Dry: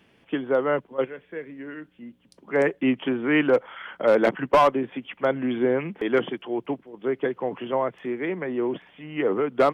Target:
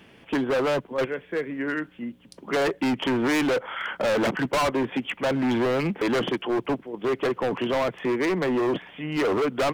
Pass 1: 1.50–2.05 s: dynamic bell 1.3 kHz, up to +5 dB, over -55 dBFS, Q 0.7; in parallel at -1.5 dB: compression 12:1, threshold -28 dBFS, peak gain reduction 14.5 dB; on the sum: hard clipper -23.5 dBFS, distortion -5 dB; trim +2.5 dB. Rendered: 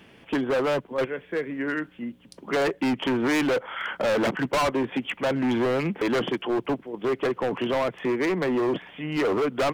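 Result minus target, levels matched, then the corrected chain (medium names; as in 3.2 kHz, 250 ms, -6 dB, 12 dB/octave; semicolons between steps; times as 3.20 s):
compression: peak gain reduction +6.5 dB
1.50–2.05 s: dynamic bell 1.3 kHz, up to +5 dB, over -55 dBFS, Q 0.7; in parallel at -1.5 dB: compression 12:1, threshold -21 dBFS, peak gain reduction 8 dB; on the sum: hard clipper -23.5 dBFS, distortion -5 dB; trim +2.5 dB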